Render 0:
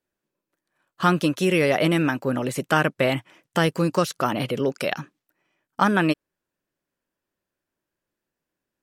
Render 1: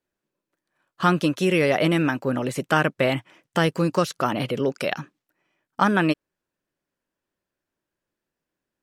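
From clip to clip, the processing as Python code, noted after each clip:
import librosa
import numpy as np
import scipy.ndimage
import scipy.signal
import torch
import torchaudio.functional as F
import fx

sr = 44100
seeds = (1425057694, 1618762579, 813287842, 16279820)

y = fx.high_shelf(x, sr, hz=10000.0, db=-6.5)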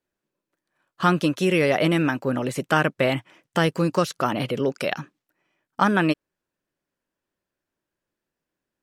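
y = x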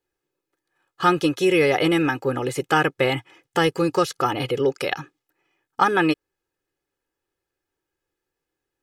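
y = x + 0.72 * np.pad(x, (int(2.4 * sr / 1000.0), 0))[:len(x)]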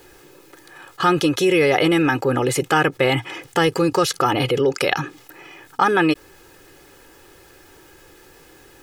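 y = fx.env_flatten(x, sr, amount_pct=50)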